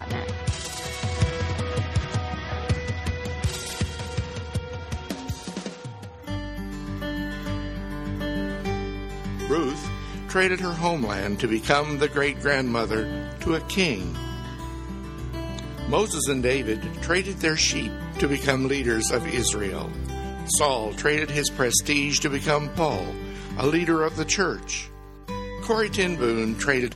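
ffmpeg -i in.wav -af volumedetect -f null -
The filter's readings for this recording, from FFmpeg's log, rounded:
mean_volume: -26.1 dB
max_volume: -2.1 dB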